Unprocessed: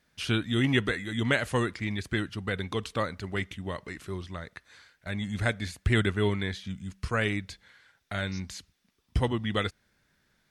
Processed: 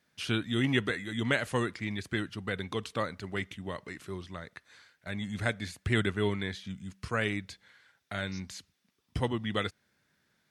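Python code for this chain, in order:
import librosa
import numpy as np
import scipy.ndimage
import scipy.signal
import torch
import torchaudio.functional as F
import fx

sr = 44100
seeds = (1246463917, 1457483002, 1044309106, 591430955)

y = scipy.signal.sosfilt(scipy.signal.butter(2, 98.0, 'highpass', fs=sr, output='sos'), x)
y = y * librosa.db_to_amplitude(-2.5)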